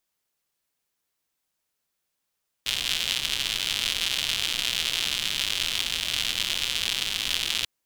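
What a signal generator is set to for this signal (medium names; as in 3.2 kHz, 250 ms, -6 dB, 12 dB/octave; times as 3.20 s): rain from filtered ticks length 4.99 s, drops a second 160, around 3.2 kHz, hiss -14.5 dB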